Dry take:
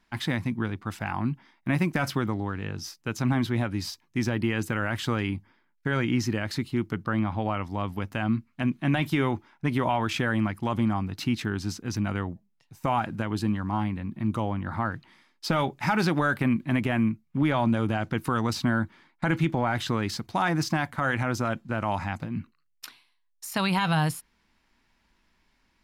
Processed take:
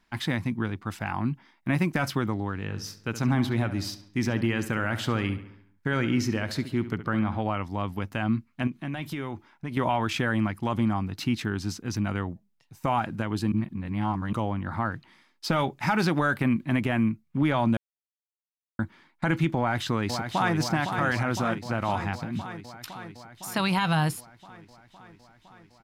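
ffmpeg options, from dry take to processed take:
-filter_complex "[0:a]asplit=3[a][b][c];[a]afade=t=out:st=2.68:d=0.02[d];[b]asplit=2[e][f];[f]adelay=69,lowpass=f=3.8k:p=1,volume=-12dB,asplit=2[g][h];[h]adelay=69,lowpass=f=3.8k:p=1,volume=0.55,asplit=2[i][j];[j]adelay=69,lowpass=f=3.8k:p=1,volume=0.55,asplit=2[k][l];[l]adelay=69,lowpass=f=3.8k:p=1,volume=0.55,asplit=2[m][n];[n]adelay=69,lowpass=f=3.8k:p=1,volume=0.55,asplit=2[o][p];[p]adelay=69,lowpass=f=3.8k:p=1,volume=0.55[q];[e][g][i][k][m][o][q]amix=inputs=7:normalize=0,afade=t=in:st=2.68:d=0.02,afade=t=out:st=7.4:d=0.02[r];[c]afade=t=in:st=7.4:d=0.02[s];[d][r][s]amix=inputs=3:normalize=0,asettb=1/sr,asplit=3[t][u][v];[t]atrim=end=8.674[w];[u]atrim=start=8.67:end=9.77,asetpts=PTS-STARTPTS,afade=t=in:d=0.004:c=qsin,afade=t=out:st=1.096:d=0.004:c=qsin,acompressor=threshold=-33dB:ratio=2.5:attack=3.2:release=140:knee=1:detection=peak[x];[v]atrim=start=9.766[y];[w][x]acrossfade=d=0.004:c1=hsin:c2=qsin[z];[z][y]acrossfade=d=0.004:c1=qsin:c2=hsin,asplit=2[aa][ab];[ab]afade=t=in:st=19.58:d=0.01,afade=t=out:st=20.56:d=0.01,aecho=0:1:510|1020|1530|2040|2550|3060|3570|4080|4590|5100|5610|6120:0.473151|0.354863|0.266148|0.199611|0.149708|0.112281|0.0842108|0.0631581|0.0473686|0.0355264|0.0266448|0.0199836[ac];[aa][ac]amix=inputs=2:normalize=0,asplit=5[ad][ae][af][ag][ah];[ad]atrim=end=13.522[ai];[ae]atrim=start=13.518:end=14.332,asetpts=PTS-STARTPTS,areverse[aj];[af]atrim=start=14.328:end=17.77,asetpts=PTS-STARTPTS,afade=t=out:st=3.438:d=0.004:c=hsin[ak];[ag]atrim=start=17.77:end=18.79,asetpts=PTS-STARTPTS,volume=0[al];[ah]atrim=start=18.79,asetpts=PTS-STARTPTS,afade=t=in:d=0.004:c=hsin[am];[ai][aj]acrossfade=d=0.004:c1=hsin:c2=hsin[an];[ak][al][am]concat=n=3:v=0:a=1[ao];[an][ao]acrossfade=d=0.004:c1=hsin:c2=hsin"

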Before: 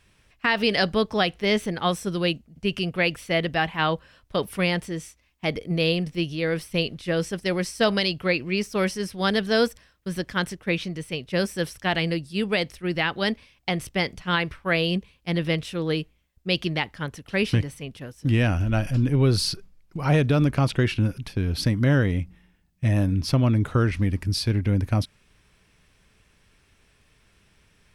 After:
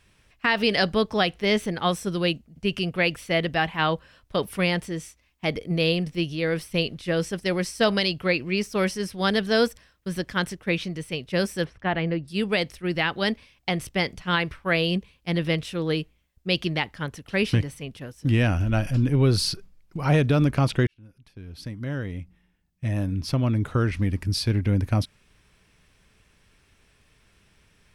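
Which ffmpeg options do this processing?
-filter_complex "[0:a]asettb=1/sr,asplit=3[a][b][c];[a]atrim=end=11.644[d];[b]atrim=start=11.64:end=12.28,asetpts=PTS-STARTPTS,afade=t=in:d=0.004:c=qsin,afade=t=out:st=0.636:d=0.004:c=qsin,lowpass=1.9k[e];[c]atrim=start=12.276[f];[d][e]acrossfade=d=0.004:c1=hsin:c2=qsin[g];[g][f]acrossfade=d=0.004:c1=qsin:c2=hsin,asplit=2[h][i];[h]atrim=end=20.87,asetpts=PTS-STARTPTS,afade=t=out:st=20.866:d=0.004:c=hsin[j];[i]atrim=start=20.87,asetpts=PTS-STARTPTS,afade=t=in:d=3.59[k];[j][k]concat=n=2:v=0:a=1"

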